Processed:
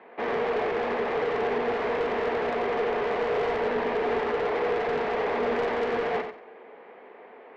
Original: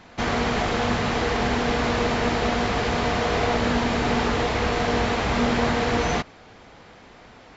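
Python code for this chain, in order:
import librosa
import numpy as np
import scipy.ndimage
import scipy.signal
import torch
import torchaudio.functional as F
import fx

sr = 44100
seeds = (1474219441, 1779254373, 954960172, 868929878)

y = fx.cabinet(x, sr, low_hz=280.0, low_slope=24, high_hz=2200.0, hz=(300.0, 430.0, 1400.0), db=(-7, 9, -7))
y = 10.0 ** (-23.5 / 20.0) * np.tanh(y / 10.0 ** (-23.5 / 20.0))
y = fx.echo_feedback(y, sr, ms=91, feedback_pct=23, wet_db=-8)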